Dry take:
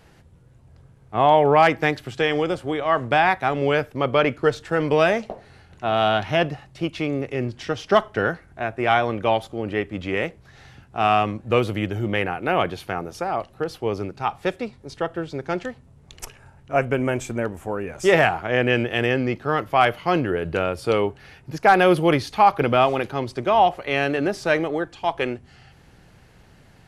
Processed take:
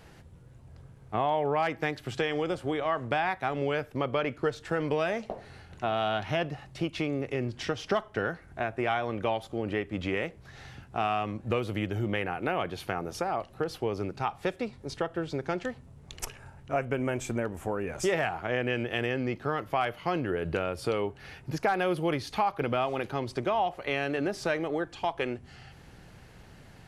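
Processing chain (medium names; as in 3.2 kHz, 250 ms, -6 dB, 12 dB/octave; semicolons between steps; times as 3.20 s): compression 3:1, threshold -28 dBFS, peak gain reduction 13.5 dB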